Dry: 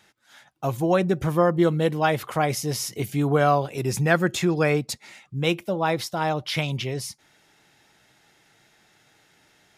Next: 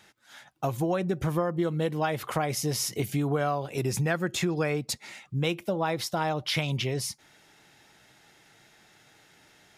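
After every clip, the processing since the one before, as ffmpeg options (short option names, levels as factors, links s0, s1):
-af "acompressor=threshold=0.0501:ratio=5,volume=1.19"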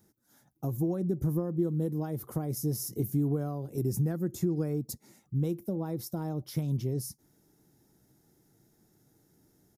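-af "firequalizer=gain_entry='entry(320,0);entry(610,-13);entry(2600,-29);entry(5500,-11);entry(7900,-10);entry(13000,3)':delay=0.05:min_phase=1"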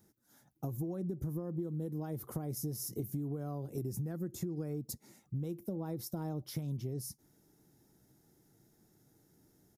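-af "acompressor=threshold=0.0224:ratio=6,volume=0.841"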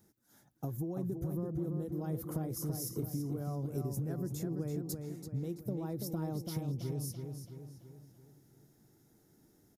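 -filter_complex "[0:a]asplit=2[s0][s1];[s1]adelay=334,lowpass=f=4700:p=1,volume=0.562,asplit=2[s2][s3];[s3]adelay=334,lowpass=f=4700:p=1,volume=0.51,asplit=2[s4][s5];[s5]adelay=334,lowpass=f=4700:p=1,volume=0.51,asplit=2[s6][s7];[s7]adelay=334,lowpass=f=4700:p=1,volume=0.51,asplit=2[s8][s9];[s9]adelay=334,lowpass=f=4700:p=1,volume=0.51,asplit=2[s10][s11];[s11]adelay=334,lowpass=f=4700:p=1,volume=0.51[s12];[s0][s2][s4][s6][s8][s10][s12]amix=inputs=7:normalize=0"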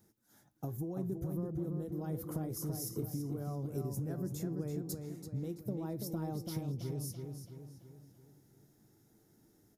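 -af "flanger=delay=8.9:depth=2.2:regen=82:speed=0.32:shape=triangular,volume=1.5"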